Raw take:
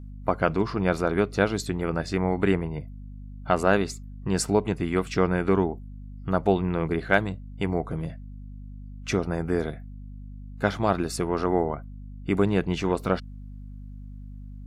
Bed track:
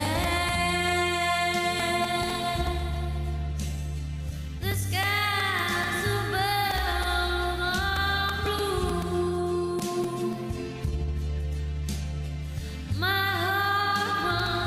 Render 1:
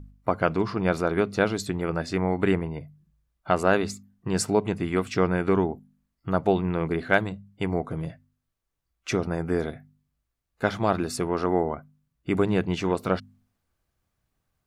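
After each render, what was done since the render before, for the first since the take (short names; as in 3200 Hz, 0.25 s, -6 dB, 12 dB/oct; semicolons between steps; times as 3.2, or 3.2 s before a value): de-hum 50 Hz, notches 5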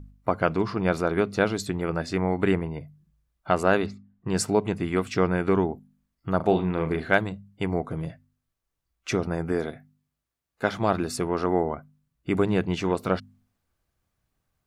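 3.86–4.28 air absorption 320 m; 6.36–7.1 flutter echo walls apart 6.5 m, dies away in 0.25 s; 9.52–10.78 HPF 150 Hz 6 dB/oct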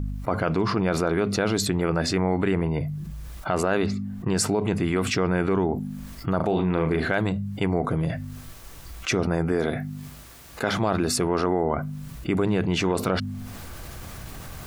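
limiter -14.5 dBFS, peak gain reduction 9.5 dB; fast leveller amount 70%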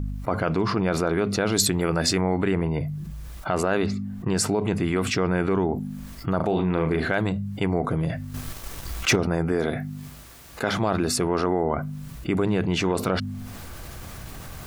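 1.52–2.21 high shelf 4600 Hz +10 dB; 8.34–9.16 sample leveller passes 2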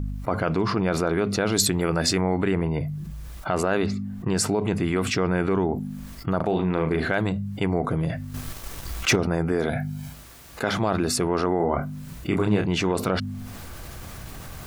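6.23–6.94 transient shaper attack 0 dB, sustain -8 dB; 9.69–10.13 comb 1.3 ms, depth 76%; 11.57–12.64 doubler 29 ms -4.5 dB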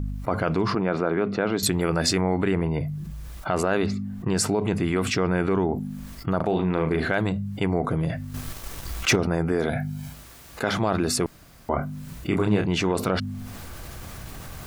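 0.75–1.63 BPF 150–2400 Hz; 11.26–11.69 room tone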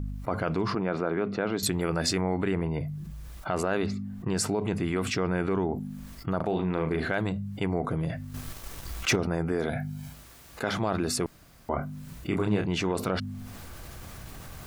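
gain -4.5 dB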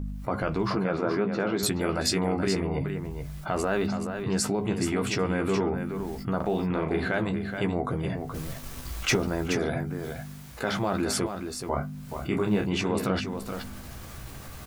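doubler 15 ms -7 dB; echo 0.425 s -7.5 dB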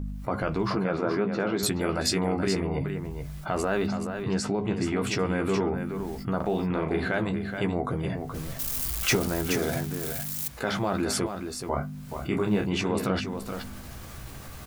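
4.34–5.02 air absorption 75 m; 8.59–10.48 switching spikes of -24 dBFS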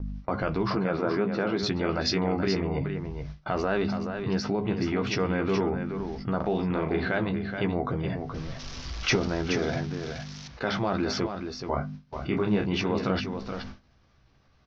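gate with hold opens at -28 dBFS; steep low-pass 5900 Hz 72 dB/oct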